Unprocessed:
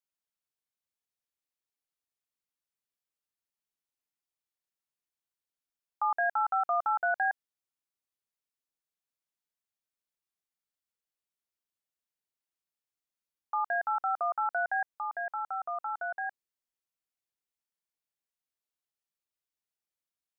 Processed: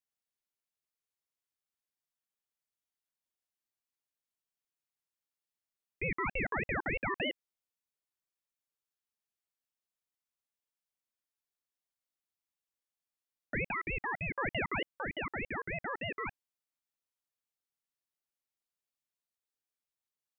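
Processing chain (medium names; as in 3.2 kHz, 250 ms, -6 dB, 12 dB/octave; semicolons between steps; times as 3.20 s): 13.71–14.38 s: high-pass 1 kHz 24 dB/octave; peak limiter -24 dBFS, peak gain reduction 3 dB; ring modulator with a swept carrier 840 Hz, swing 65%, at 3.3 Hz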